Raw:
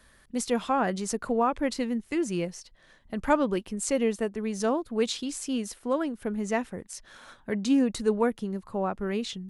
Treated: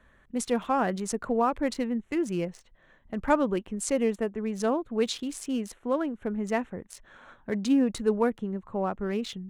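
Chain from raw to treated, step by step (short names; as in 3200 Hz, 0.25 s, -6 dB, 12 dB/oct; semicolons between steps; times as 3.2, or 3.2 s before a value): Wiener smoothing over 9 samples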